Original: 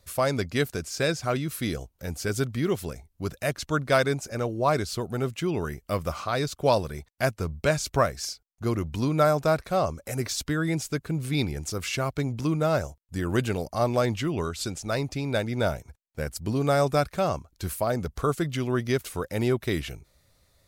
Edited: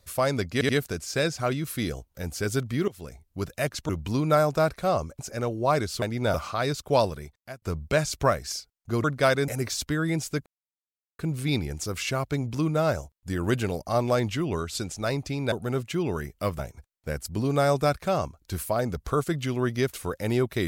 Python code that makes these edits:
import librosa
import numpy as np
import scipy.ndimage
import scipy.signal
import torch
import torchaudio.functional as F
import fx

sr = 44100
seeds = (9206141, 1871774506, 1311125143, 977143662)

y = fx.edit(x, sr, fx.stutter(start_s=0.53, slice_s=0.08, count=3),
    fx.fade_in_from(start_s=2.72, length_s=0.36, floor_db=-19.5),
    fx.swap(start_s=3.73, length_s=0.44, other_s=8.77, other_length_s=1.3),
    fx.swap(start_s=5.0, length_s=1.07, other_s=15.38, other_length_s=0.32),
    fx.fade_out_span(start_s=6.76, length_s=0.59),
    fx.insert_silence(at_s=11.05, length_s=0.73), tone=tone)